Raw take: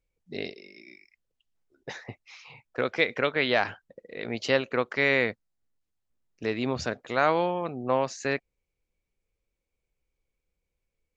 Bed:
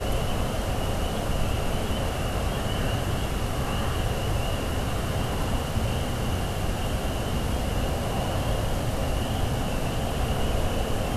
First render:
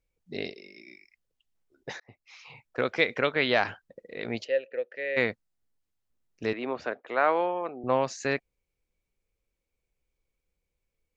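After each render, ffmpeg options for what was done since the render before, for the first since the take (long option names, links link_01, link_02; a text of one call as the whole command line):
ffmpeg -i in.wav -filter_complex "[0:a]asplit=3[link_01][link_02][link_03];[link_01]afade=type=out:start_time=4.43:duration=0.02[link_04];[link_02]asplit=3[link_05][link_06][link_07];[link_05]bandpass=frequency=530:width_type=q:width=8,volume=0dB[link_08];[link_06]bandpass=frequency=1840:width_type=q:width=8,volume=-6dB[link_09];[link_07]bandpass=frequency=2480:width_type=q:width=8,volume=-9dB[link_10];[link_08][link_09][link_10]amix=inputs=3:normalize=0,afade=type=in:start_time=4.43:duration=0.02,afade=type=out:start_time=5.16:duration=0.02[link_11];[link_03]afade=type=in:start_time=5.16:duration=0.02[link_12];[link_04][link_11][link_12]amix=inputs=3:normalize=0,asettb=1/sr,asplit=3[link_13][link_14][link_15];[link_13]atrim=end=6.534[link_16];[link_14]atrim=start=6.53:end=7.84,asetpts=PTS-STARTPTS,afade=type=in:duration=0.004:curve=qsin,afade=type=out:start_time=1.306:duration=0.004:curve=qsin,acrossover=split=280 2900:gain=0.0794 1 0.0891[link_17][link_18][link_19];[link_17][link_18][link_19]amix=inputs=3:normalize=0[link_20];[link_15]atrim=start=7.836[link_21];[link_16][link_20]acrossfade=duration=0.004:curve1=hsin:curve2=qsin[link_22];[link_22][link_21]acrossfade=duration=0.004:curve1=qsin:curve2=hsin,asplit=2[link_23][link_24];[link_23]atrim=end=2,asetpts=PTS-STARTPTS,afade=type=out:start_time=1.996:duration=0.004:curve=hsin[link_25];[link_24]atrim=start=2,asetpts=PTS-STARTPTS,afade=type=in:duration=0.46[link_26];[link_25][link_26]concat=n=2:v=0:a=1" out.wav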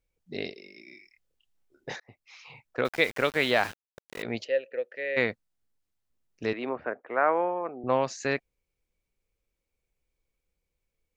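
ffmpeg -i in.wav -filter_complex "[0:a]asettb=1/sr,asplit=3[link_01][link_02][link_03];[link_01]atrim=end=0.894[link_04];[link_02]atrim=start=0.89:end=1.96,asetpts=PTS-STARTPTS,afade=type=in:duration=0.004:curve=qsin,afade=type=out:start_time=1.066:duration=0.004:curve=qsin,asplit=2[link_05][link_06];[link_06]adelay=28,volume=-3.5dB[link_07];[link_05][link_07]amix=inputs=2:normalize=0,atrim=end_sample=47187[link_08];[link_03]atrim=start=1.956[link_09];[link_04][link_08]acrossfade=duration=0.004:curve1=hsin:curve2=qsin[link_10];[link_10][link_09]acrossfade=duration=0.004:curve1=qsin:curve2=hsin,asettb=1/sr,asplit=3[link_11][link_12][link_13];[link_11]atrim=end=2.854[link_14];[link_12]atrim=start=2.85:end=4.23,asetpts=PTS-STARTPTS,afade=type=in:duration=0.004:curve=qsin,afade=type=out:start_time=1.376:duration=0.004:curve=qsin,aeval=exprs='val(0)*gte(abs(val(0)),0.0141)':channel_layout=same[link_15];[link_13]atrim=start=4.226[link_16];[link_14][link_15]acrossfade=duration=0.004:curve1=hsin:curve2=qsin[link_17];[link_17][link_16]acrossfade=duration=0.004:curve1=qsin:curve2=hsin,asettb=1/sr,asplit=3[link_18][link_19][link_20];[link_18]atrim=end=6.694[link_21];[link_19]atrim=start=6.69:end=7.87,asetpts=PTS-STARTPTS,afade=type=in:duration=0.004:curve=qsin,afade=type=out:start_time=1.176:duration=0.004:curve=qsin,lowpass=frequency=2100:width=0.5412,lowpass=frequency=2100:width=1.3066[link_22];[link_20]atrim=start=7.866[link_23];[link_21][link_22]acrossfade=duration=0.004:curve1=hsin:curve2=qsin[link_24];[link_24][link_23]acrossfade=duration=0.004:curve1=qsin:curve2=hsin" out.wav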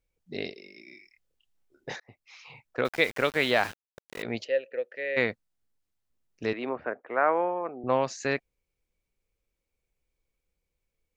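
ffmpeg -i in.wav -af anull out.wav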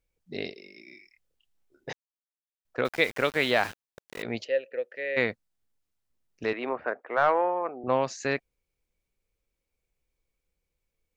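ffmpeg -i in.wav -filter_complex "[0:a]asettb=1/sr,asplit=3[link_01][link_02][link_03];[link_01]atrim=end=6.444[link_04];[link_02]atrim=start=6.44:end=7.88,asetpts=PTS-STARTPTS,afade=type=in:duration=0.004:curve=qsin,afade=type=out:start_time=1.436:duration=0.004:curve=qsin,asplit=2[link_05][link_06];[link_06]highpass=frequency=720:poles=1,volume=10dB,asoftclip=type=tanh:threshold=-10.5dB[link_07];[link_05][link_07]amix=inputs=2:normalize=0,lowpass=frequency=2100:poles=1,volume=-6dB[link_08];[link_03]atrim=start=7.876[link_09];[link_04][link_08]acrossfade=duration=0.004:curve1=hsin:curve2=qsin[link_10];[link_10][link_09]acrossfade=duration=0.004:curve1=qsin:curve2=hsin,asplit=3[link_11][link_12][link_13];[link_11]atrim=end=1.93,asetpts=PTS-STARTPTS,afade=type=out:start_time=1.926:duration=0.004:curve=hsin[link_14];[link_12]atrim=start=1.93:end=2.65,asetpts=PTS-STARTPTS,volume=0[link_15];[link_13]atrim=start=2.65,asetpts=PTS-STARTPTS,afade=type=in:duration=0.004:curve=hsin[link_16];[link_14][link_15][link_16]concat=n=3:v=0:a=1" out.wav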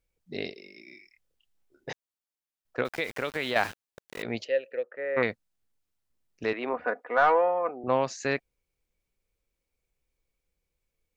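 ffmpeg -i in.wav -filter_complex "[0:a]asettb=1/sr,asplit=3[link_01][link_02][link_03];[link_01]atrim=end=2.824[link_04];[link_02]atrim=start=2.82:end=3.56,asetpts=PTS-STARTPTS,afade=type=in:duration=0.004:curve=qsin,afade=type=out:start_time=0.736:duration=0.004:curve=qsin,acompressor=threshold=-28dB:ratio=2.5:attack=3.2:release=140:knee=1:detection=peak[link_05];[link_03]atrim=start=3.556[link_06];[link_04][link_05]acrossfade=duration=0.004:curve1=hsin:curve2=qsin[link_07];[link_07][link_06]acrossfade=duration=0.004:curve1=qsin:curve2=hsin,asettb=1/sr,asplit=3[link_08][link_09][link_10];[link_08]atrim=end=4.834[link_11];[link_09]atrim=start=4.83:end=5.23,asetpts=PTS-STARTPTS,afade=type=in:duration=0.004:curve=qsin,afade=type=out:start_time=0.396:duration=0.004:curve=qsin,lowpass=frequency=1200:width_type=q:width=4.7[link_12];[link_10]atrim=start=5.226[link_13];[link_11][link_12]acrossfade=duration=0.004:curve1=hsin:curve2=qsin[link_14];[link_14][link_13]acrossfade=duration=0.004:curve1=qsin:curve2=hsin,asettb=1/sr,asplit=3[link_15][link_16][link_17];[link_15]atrim=end=6.734[link_18];[link_16]atrim=start=6.73:end=7.71,asetpts=PTS-STARTPTS,afade=type=in:duration=0.004:curve=qsin,afade=type=out:start_time=0.976:duration=0.004:curve=qsin,aecho=1:1:4.1:0.65,atrim=end_sample=43218[link_19];[link_17]atrim=start=7.706[link_20];[link_18][link_19]acrossfade=duration=0.004:curve1=hsin:curve2=qsin[link_21];[link_21][link_20]acrossfade=duration=0.004:curve1=qsin:curve2=hsin" out.wav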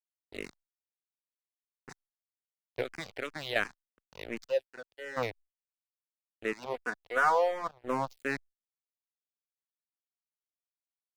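ffmpeg -i in.wav -filter_complex "[0:a]aeval=exprs='sgn(val(0))*max(abs(val(0))-0.0178,0)':channel_layout=same,asplit=2[link_01][link_02];[link_02]afreqshift=-2.8[link_03];[link_01][link_03]amix=inputs=2:normalize=1" out.wav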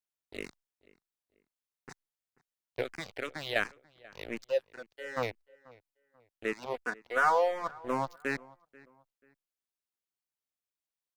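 ffmpeg -i in.wav -filter_complex "[0:a]asplit=2[link_01][link_02];[link_02]adelay=487,lowpass=frequency=2500:poles=1,volume=-22.5dB,asplit=2[link_03][link_04];[link_04]adelay=487,lowpass=frequency=2500:poles=1,volume=0.34[link_05];[link_01][link_03][link_05]amix=inputs=3:normalize=0" out.wav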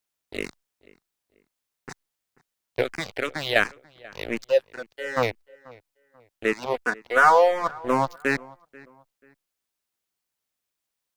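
ffmpeg -i in.wav -af "volume=9.5dB" out.wav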